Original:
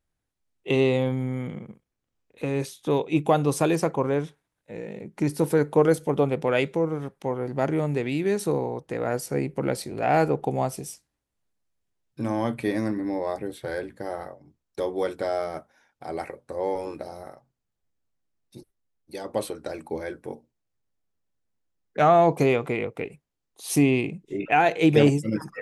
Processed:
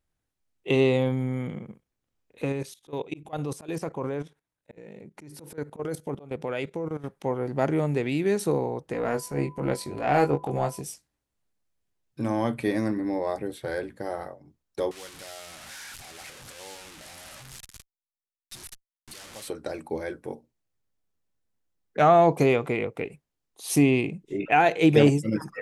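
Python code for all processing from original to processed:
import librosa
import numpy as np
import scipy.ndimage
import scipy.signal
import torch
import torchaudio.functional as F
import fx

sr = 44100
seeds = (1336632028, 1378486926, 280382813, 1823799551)

y = fx.chain(x, sr, fx.auto_swell(attack_ms=180.0),
    fx.level_steps(step_db=15), at=(2.52, 7.04))
y = fx.transient(y, sr, attack_db=-9, sustain_db=-4, at=(8.93, 10.8), fade=0.02)
y = fx.dmg_tone(y, sr, hz=1000.0, level_db=-51.0, at=(8.93, 10.8), fade=0.02)
y = fx.doubler(y, sr, ms=21.0, db=-6.0, at=(8.93, 10.8), fade=0.02)
y = fx.chain(y, sr, fx.delta_mod(bps=64000, step_db=-26.0),
    fx.tone_stack(knobs='5-5-5'), at=(14.91, 19.48))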